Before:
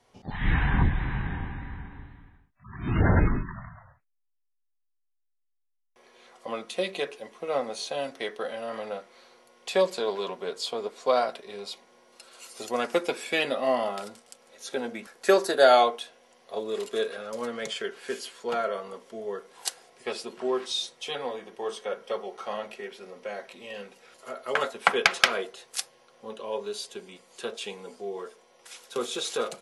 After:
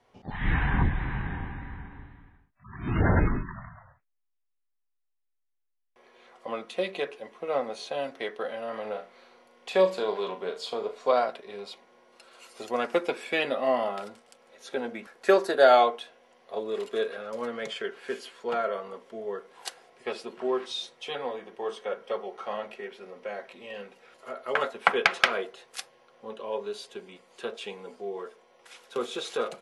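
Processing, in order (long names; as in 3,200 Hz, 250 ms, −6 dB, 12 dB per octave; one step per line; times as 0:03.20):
bass and treble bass −2 dB, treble −10 dB
0:08.81–0:11.13: flutter between parallel walls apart 6.4 metres, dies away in 0.27 s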